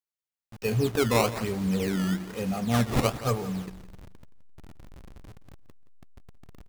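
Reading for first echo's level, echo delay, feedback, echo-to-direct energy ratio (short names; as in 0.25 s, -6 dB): -15.5 dB, 0.172 s, 27%, -15.0 dB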